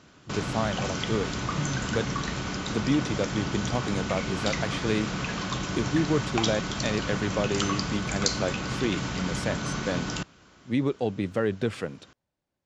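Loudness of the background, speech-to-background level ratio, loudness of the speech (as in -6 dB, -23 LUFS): -30.5 LUFS, 0.0 dB, -30.5 LUFS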